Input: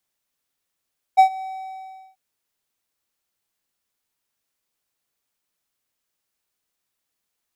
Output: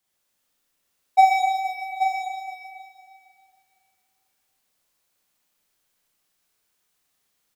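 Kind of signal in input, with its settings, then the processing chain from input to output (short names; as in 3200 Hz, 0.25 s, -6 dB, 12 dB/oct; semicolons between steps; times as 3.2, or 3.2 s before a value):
ADSR triangle 761 Hz, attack 24 ms, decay 93 ms, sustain -21.5 dB, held 0.24 s, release 0.748 s -4.5 dBFS
on a send: echo 0.83 s -8 dB; on the sum: Schroeder reverb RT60 2.3 s, combs from 31 ms, DRR -5 dB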